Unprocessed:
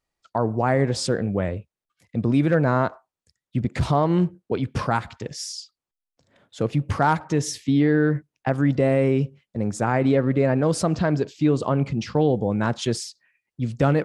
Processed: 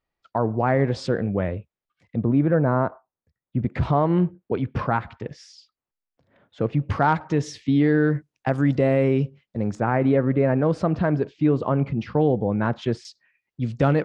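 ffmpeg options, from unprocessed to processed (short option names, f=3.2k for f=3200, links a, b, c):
-af "asetnsamples=n=441:p=0,asendcmd='2.16 lowpass f 1300;3.59 lowpass f 2400;6.83 lowpass f 3900;7.84 lowpass f 9000;8.78 lowpass f 4900;9.75 lowpass f 2300;13.05 lowpass f 5100',lowpass=3.3k"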